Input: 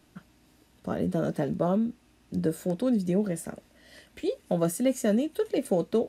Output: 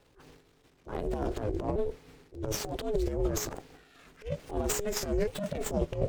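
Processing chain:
pitch shifter swept by a sawtooth −7 semitones, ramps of 879 ms
dynamic equaliser 7,300 Hz, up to +6 dB, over −56 dBFS, Q 2.1
transient designer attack −12 dB, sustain +12 dB
ring modulation 210 Hz
windowed peak hold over 3 samples

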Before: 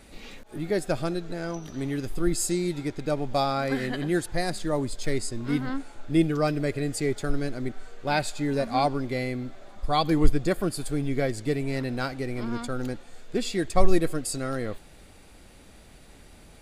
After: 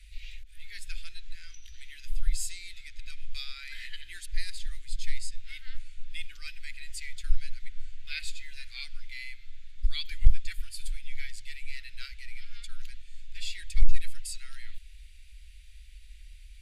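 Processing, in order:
inverse Chebyshev band-stop filter 130–990 Hz, stop band 50 dB
bass and treble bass +6 dB, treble −9 dB
in parallel at −11 dB: sine wavefolder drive 7 dB, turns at −0.5 dBFS
on the sum: level −5 dB

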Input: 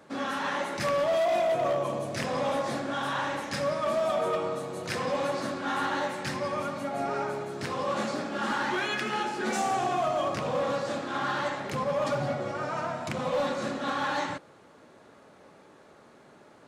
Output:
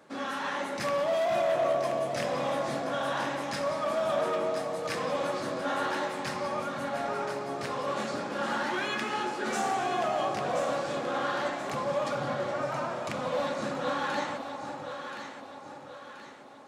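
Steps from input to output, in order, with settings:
low-shelf EQ 140 Hz −7.5 dB
on a send: delay that swaps between a low-pass and a high-pass 514 ms, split 880 Hz, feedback 67%, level −4 dB
on the sum: level −2 dB

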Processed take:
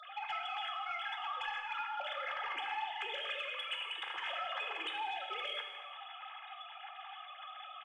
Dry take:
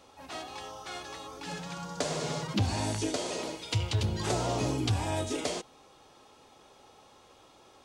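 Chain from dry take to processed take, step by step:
three sine waves on the formant tracks
Bessel high-pass filter 1,300 Hz, order 4
comb filter 2.4 ms, depth 69%
downward compressor 16 to 1, threshold −47 dBFS, peak gain reduction 16 dB
soft clipping −38.5 dBFS, distortion −27 dB
reverb whose tail is shaped and stops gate 470 ms falling, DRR 2.5 dB
level +9.5 dB

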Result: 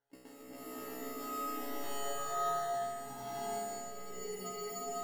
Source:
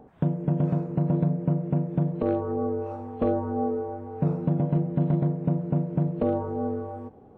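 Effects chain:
gliding playback speed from 195% → 98%
low-shelf EQ 110 Hz +7 dB
notch filter 1,100 Hz, Q 6.6
tuned comb filter 140 Hz, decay 1.8 s, mix 100%
on a send: flutter between parallel walls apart 5.7 metres, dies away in 1.4 s
on the sum: output level in coarse steps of 22 dB
in parallel at −5.5 dB: decimation without filtering 18×
on the sum: downward compressor, threshold −46 dBFS, peak gain reduction 8 dB
tilt shelving filter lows −5 dB, about 760 Hz
tuned comb filter 63 Hz, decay 1 s, harmonics all, mix 100%
frozen spectrum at 0:03.92, 0.52 s
slow-attack reverb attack 640 ms, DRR −10.5 dB
level +17.5 dB

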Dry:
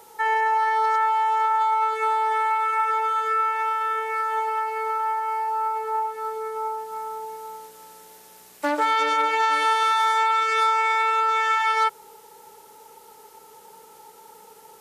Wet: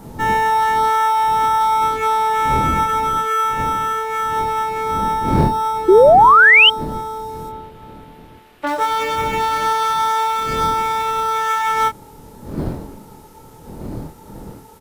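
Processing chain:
wind on the microphone 280 Hz −33 dBFS
in parallel at −10.5 dB: sample-rate reduction 4,600 Hz, jitter 0%
0:07.49–0:08.67: on the sum: high shelf with overshoot 4,500 Hz −12.5 dB, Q 1.5
double-tracking delay 25 ms −5.5 dB
0:05.88–0:06.70: sound drawn into the spectrogram rise 350–3,200 Hz −8 dBFS

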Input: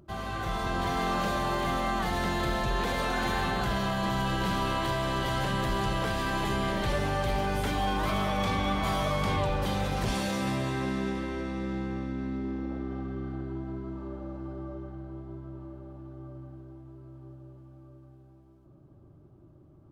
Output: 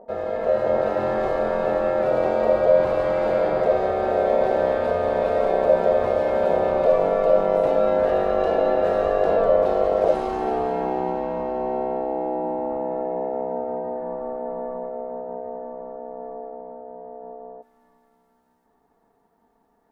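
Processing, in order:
spectral tilt −4 dB per octave, from 0:17.61 +3 dB per octave
ring modulation 570 Hz

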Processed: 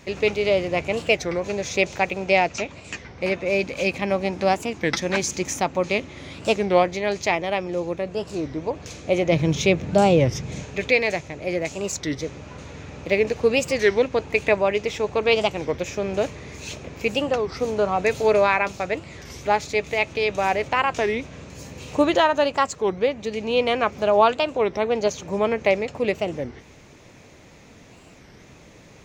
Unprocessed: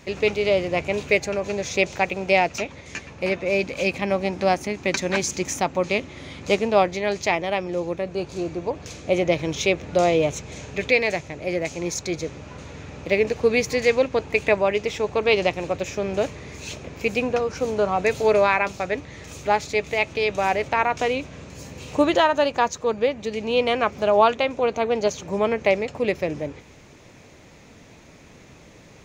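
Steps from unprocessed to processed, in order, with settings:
0:02.25–0:03.23: Butterworth low-pass 8,600 Hz 48 dB per octave
0:09.32–0:10.63: parametric band 150 Hz +10 dB 1.6 octaves
wow of a warped record 33 1/3 rpm, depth 250 cents

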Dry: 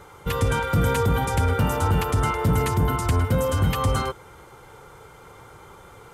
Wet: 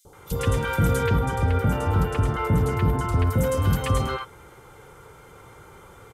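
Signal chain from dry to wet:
0:01.04–0:03.27: high-shelf EQ 3,300 Hz −9 dB
three-band delay without the direct sound highs, lows, mids 50/130 ms, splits 860/4,300 Hz

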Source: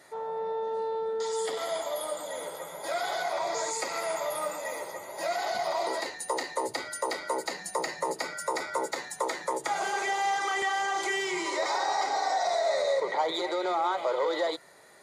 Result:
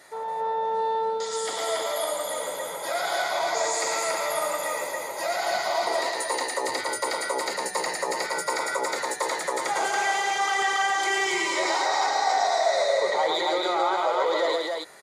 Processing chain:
low-shelf EQ 490 Hz −6 dB
in parallel at −2.5 dB: brickwall limiter −26 dBFS, peak gain reduction 7.5 dB
on the sum: loudspeakers that aren't time-aligned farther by 38 metres −4 dB, 96 metres −3 dB

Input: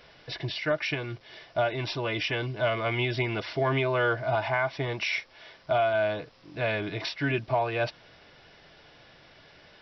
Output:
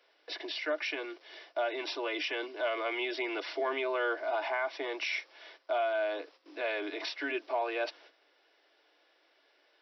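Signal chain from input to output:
noise gate −51 dBFS, range −11 dB
Butterworth high-pass 290 Hz 72 dB per octave
in parallel at +1 dB: brickwall limiter −25 dBFS, peak gain reduction 9.5 dB
on the sum: level −9 dB

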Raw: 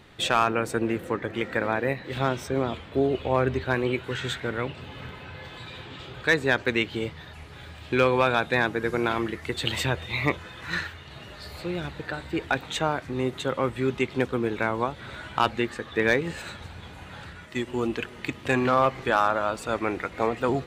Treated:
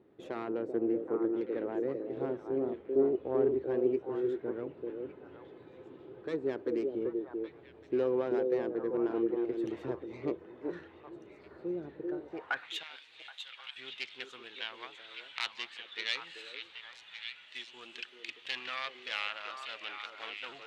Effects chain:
phase distortion by the signal itself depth 0.16 ms
0:12.83–0:13.76: guitar amp tone stack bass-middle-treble 10-0-10
echo through a band-pass that steps 387 ms, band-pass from 390 Hz, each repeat 1.4 octaves, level −1 dB
band-pass filter sweep 360 Hz → 3,200 Hz, 0:12.19–0:12.76
level −2.5 dB

